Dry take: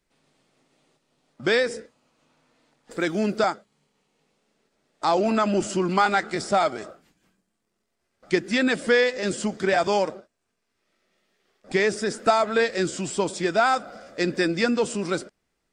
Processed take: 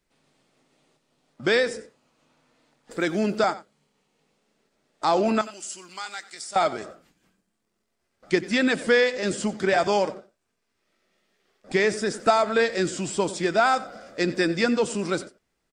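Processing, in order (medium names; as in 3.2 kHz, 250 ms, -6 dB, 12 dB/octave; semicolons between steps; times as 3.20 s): 5.41–6.56 s: pre-emphasis filter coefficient 0.97; on a send: delay 92 ms -17.5 dB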